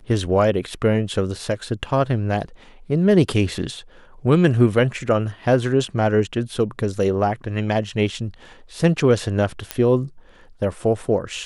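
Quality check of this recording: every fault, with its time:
0:09.71: click −7 dBFS

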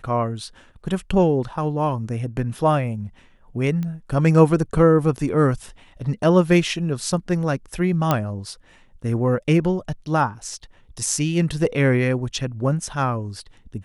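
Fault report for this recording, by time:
0:03.83: click −18 dBFS
0:08.11: click −5 dBFS

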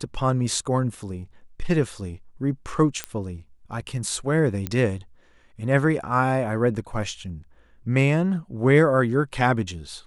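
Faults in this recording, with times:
0:03.04: click −11 dBFS
0:04.67: click −12 dBFS

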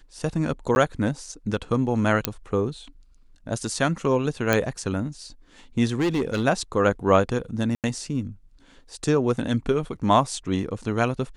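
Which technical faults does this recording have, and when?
0:00.75–0:00.76: drop-out 11 ms
0:02.25: click −3 dBFS
0:04.53: click −6 dBFS
0:05.99–0:06.44: clipping −19 dBFS
0:07.75–0:07.84: drop-out 88 ms

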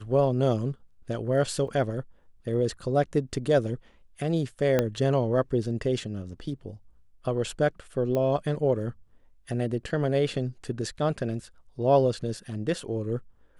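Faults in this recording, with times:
0:01.68: drop-out 4.1 ms
0:04.79: click −10 dBFS
0:08.15: click −17 dBFS

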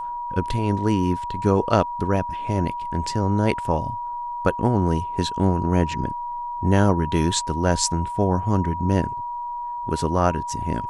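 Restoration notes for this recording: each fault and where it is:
whistle 960 Hz −27 dBFS

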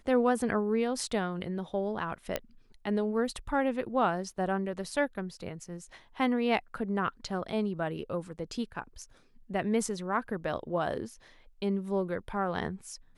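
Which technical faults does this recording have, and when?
0:02.36: click −15 dBFS

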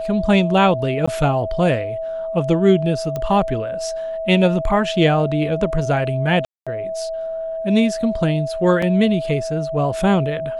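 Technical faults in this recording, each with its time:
whistle 650 Hz −23 dBFS
0:01.06–0:01.07: drop-out 15 ms
0:03.16: click −13 dBFS
0:06.45–0:06.67: drop-out 216 ms
0:08.82: drop-out 4.3 ms

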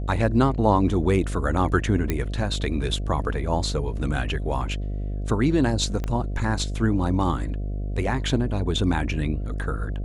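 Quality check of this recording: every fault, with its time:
mains buzz 50 Hz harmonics 14 −28 dBFS
0:02.10: click −10 dBFS
0:06.04: click −16 dBFS

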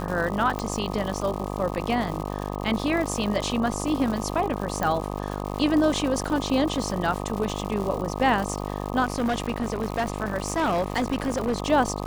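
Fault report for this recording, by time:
mains buzz 50 Hz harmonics 25 −31 dBFS
surface crackle 200 per second −30 dBFS
0:00.59: click −15 dBFS
0:04.83: click −12 dBFS
0:09.04–0:11.60: clipping −20 dBFS

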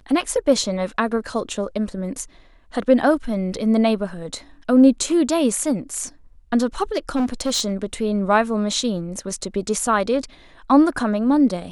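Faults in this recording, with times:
0:07.15–0:07.94: clipping −17 dBFS

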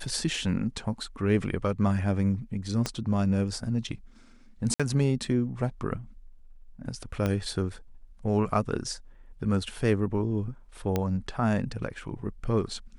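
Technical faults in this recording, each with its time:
0:02.86: click −14 dBFS
0:04.74–0:04.80: drop-out 56 ms
0:07.26: click −15 dBFS
0:10.96: click −13 dBFS

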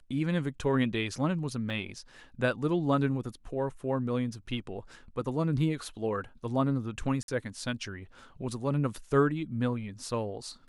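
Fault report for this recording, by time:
0:01.70: drop-out 2.8 ms
0:07.23–0:07.28: drop-out 52 ms

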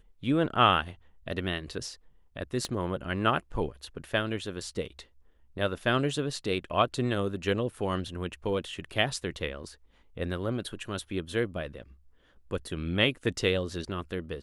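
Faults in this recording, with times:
0:02.65: click −19 dBFS

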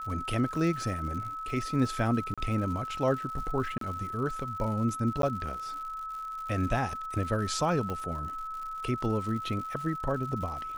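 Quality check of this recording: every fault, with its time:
surface crackle 140 per second −39 dBFS
whistle 1,300 Hz −35 dBFS
0:02.34–0:02.38: drop-out 36 ms
0:03.78–0:03.81: drop-out 33 ms
0:05.22–0:05.23: drop-out
0:07.90: click −22 dBFS

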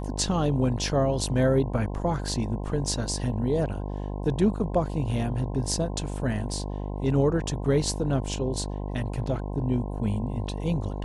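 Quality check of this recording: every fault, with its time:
mains buzz 50 Hz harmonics 21 −32 dBFS

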